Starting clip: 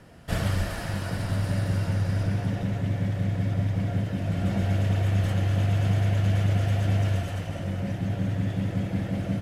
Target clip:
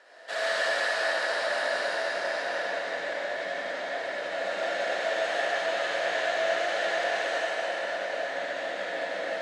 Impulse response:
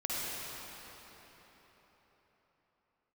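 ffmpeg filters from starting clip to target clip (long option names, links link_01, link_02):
-filter_complex "[0:a]highpass=frequency=480:width=0.5412,highpass=frequency=480:width=1.3066,equalizer=frequency=630:width_type=q:width=4:gain=5,equalizer=frequency=1700:width_type=q:width=4:gain=9,equalizer=frequency=4000:width_type=q:width=4:gain=8,lowpass=frequency=8400:width=0.5412,lowpass=frequency=8400:width=1.3066[link_01];[1:a]atrim=start_sample=2205,asetrate=38808,aresample=44100[link_02];[link_01][link_02]afir=irnorm=-1:irlink=0,volume=-2dB"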